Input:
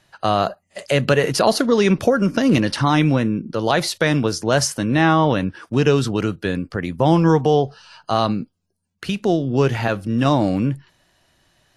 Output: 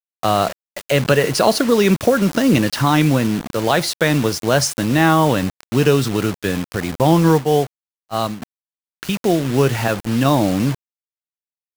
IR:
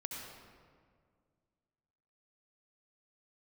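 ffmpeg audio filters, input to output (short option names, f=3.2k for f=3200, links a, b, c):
-filter_complex "[0:a]acrusher=bits=4:mix=0:aa=0.000001,asplit=3[a][b][c];[a]afade=t=out:st=7.32:d=0.02[d];[b]agate=range=-33dB:threshold=-12dB:ratio=3:detection=peak,afade=t=in:st=7.32:d=0.02,afade=t=out:st=8.41:d=0.02[e];[c]afade=t=in:st=8.41:d=0.02[f];[d][e][f]amix=inputs=3:normalize=0,volume=1.5dB"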